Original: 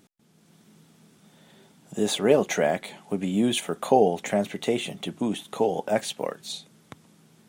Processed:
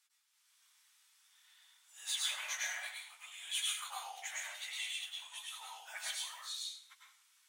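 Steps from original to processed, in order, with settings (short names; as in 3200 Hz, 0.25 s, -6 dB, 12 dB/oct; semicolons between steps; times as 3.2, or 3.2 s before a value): phase scrambler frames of 50 ms; Bessel high-pass 1800 Hz, order 8; reverb RT60 0.55 s, pre-delay 95 ms, DRR -2 dB; gain -8 dB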